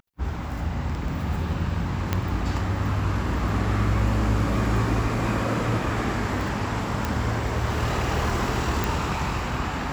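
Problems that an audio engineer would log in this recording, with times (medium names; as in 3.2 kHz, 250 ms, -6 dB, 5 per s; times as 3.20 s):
2.13 s: pop -9 dBFS
7.05 s: pop
8.84 s: pop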